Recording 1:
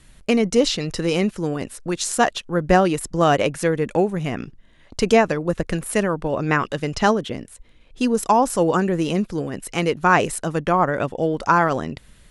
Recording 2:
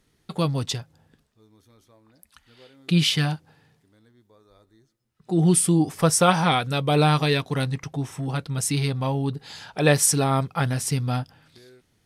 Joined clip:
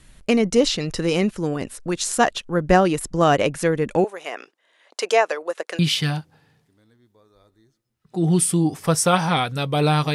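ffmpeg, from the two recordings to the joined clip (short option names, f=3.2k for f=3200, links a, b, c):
-filter_complex "[0:a]asettb=1/sr,asplit=3[a][b][c];[a]atrim=end=4.044[d];[b]atrim=start=4.04:end=5.79,asetpts=PTS-STARTPTS,afade=t=in:d=0.004:c=qsin,afade=t=out:st=1.746:d=0.004:c=qsin,highpass=f=470:w=0.5412,highpass=f=470:w=1.3066[e];[c]atrim=start=5.786[f];[d][e]acrossfade=d=0.004:c1=hsin:c2=qsin[g];[g][f]acrossfade=d=0.004:c1=qsin:c2=hsin,apad=whole_dur=10.14,atrim=end=10.14,atrim=end=5.792[h];[1:a]atrim=start=2.938:end=7.29[i];[h][i]acrossfade=d=0.004:c1=hsin:c2=hsin"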